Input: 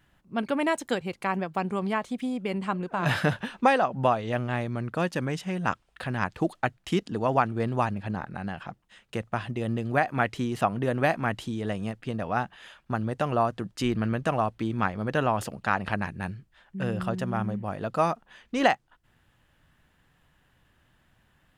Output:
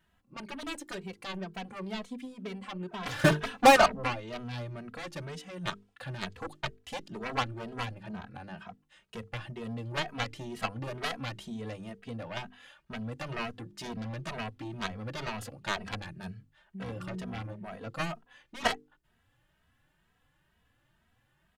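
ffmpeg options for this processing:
-filter_complex "[0:a]asplit=2[s0][s1];[s1]asoftclip=type=hard:threshold=0.1,volume=0.447[s2];[s0][s2]amix=inputs=2:normalize=0,asettb=1/sr,asplit=3[s3][s4][s5];[s3]atrim=end=3.194[s6];[s4]atrim=start=3.19:end=4.03,asetpts=PTS-STARTPTS,afade=t=in:d=0.004:c=qsin,afade=t=out:st=0.836:d=0.004:c=qsin,acontrast=85[s7];[s5]atrim=start=4.026[s8];[s6][s7]acrossfade=d=0.004:c1=hsin:c2=qsin[s9];[s9][s8]acrossfade=d=0.004:c1=qsin:c2=hsin,aeval=exprs='0.668*(cos(1*acos(clip(val(0)/0.668,-1,1)))-cos(1*PI/2))+0.168*(cos(7*acos(clip(val(0)/0.668,-1,1)))-cos(7*PI/2))':c=same,bandreject=f=50:t=h:w=6,bandreject=f=100:t=h:w=6,bandreject=f=150:t=h:w=6,bandreject=f=200:t=h:w=6,bandreject=f=250:t=h:w=6,bandreject=f=300:t=h:w=6,bandreject=f=350:t=h:w=6,bandreject=f=400:t=h:w=6,bandreject=f=450:t=h:w=6,asplit=2[s10][s11];[s11]adelay=2.8,afreqshift=2.1[s12];[s10][s12]amix=inputs=2:normalize=1,volume=0.631"

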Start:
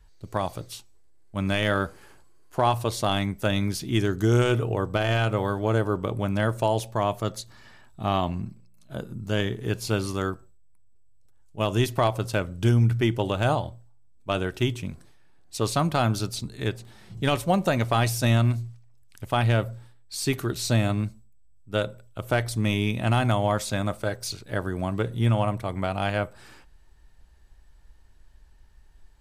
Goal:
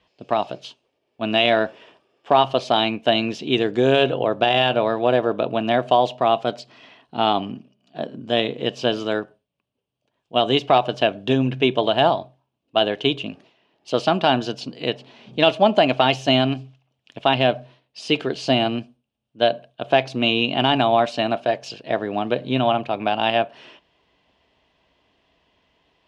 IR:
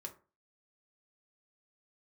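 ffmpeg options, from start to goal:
-af "aexciter=amount=2.1:drive=3.2:freq=2100,highpass=220,equalizer=f=240:t=q:w=4:g=4,equalizer=f=570:t=q:w=4:g=7,equalizer=f=1200:t=q:w=4:g=-4,equalizer=f=1800:t=q:w=4:g=-6,equalizer=f=2600:t=q:w=4:g=4,lowpass=f=3400:w=0.5412,lowpass=f=3400:w=1.3066,asetrate=49392,aresample=44100,volume=1.78"

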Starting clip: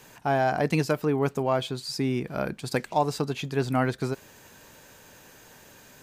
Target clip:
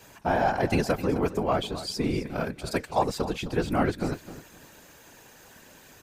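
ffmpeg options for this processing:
-af "afftfilt=real='hypot(re,im)*cos(2*PI*random(0))':imag='hypot(re,im)*sin(2*PI*random(1))':win_size=512:overlap=0.75,aecho=1:1:260|520|780:0.2|0.0479|0.0115,volume=1.88"

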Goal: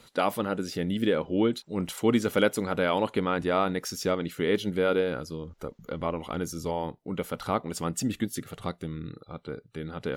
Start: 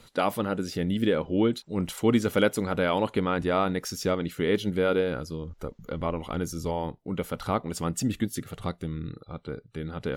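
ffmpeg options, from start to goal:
-af "lowshelf=f=93:g=-10"

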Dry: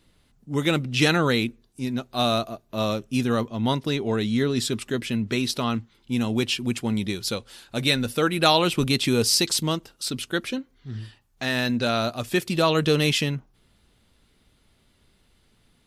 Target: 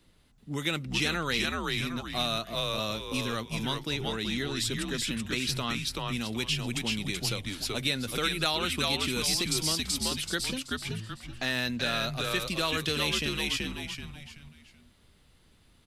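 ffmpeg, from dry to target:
-filter_complex "[0:a]asplit=5[s0][s1][s2][s3][s4];[s1]adelay=380,afreqshift=-96,volume=0.708[s5];[s2]adelay=760,afreqshift=-192,volume=0.226[s6];[s3]adelay=1140,afreqshift=-288,volume=0.0724[s7];[s4]adelay=1520,afreqshift=-384,volume=0.0232[s8];[s0][s5][s6][s7][s8]amix=inputs=5:normalize=0,acrossover=split=110|1400[s9][s10][s11];[s9]acompressor=threshold=0.00631:ratio=4[s12];[s10]acompressor=threshold=0.0251:ratio=4[s13];[s11]acompressor=threshold=0.0562:ratio=4[s14];[s12][s13][s14]amix=inputs=3:normalize=0,volume=0.841"

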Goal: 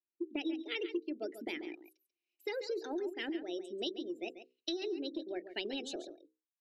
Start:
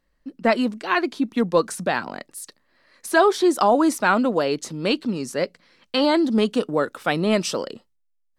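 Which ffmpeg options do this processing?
-filter_complex "[0:a]afftdn=nr=24:nf=-30,asplit=3[s0][s1][s2];[s0]bandpass=f=270:t=q:w=8,volume=1[s3];[s1]bandpass=f=2290:t=q:w=8,volume=0.501[s4];[s2]bandpass=f=3010:t=q:w=8,volume=0.355[s5];[s3][s4][s5]amix=inputs=3:normalize=0,lowshelf=f=97:g=-11,bandreject=f=50:t=h:w=6,bandreject=f=100:t=h:w=6,bandreject=f=150:t=h:w=6,bandreject=f=200:t=h:w=6,bandreject=f=250:t=h:w=6,bandreject=f=300:t=h:w=6,bandreject=f=350:t=h:w=6,bandreject=f=400:t=h:w=6,acompressor=threshold=0.01:ratio=5,asubboost=boost=8.5:cutoff=63,asetrate=56007,aresample=44100,aecho=1:1:139:0.266,volume=2"

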